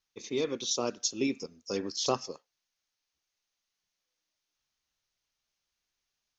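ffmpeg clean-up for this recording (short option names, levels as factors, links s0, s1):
-af "agate=range=0.0891:threshold=0.000141"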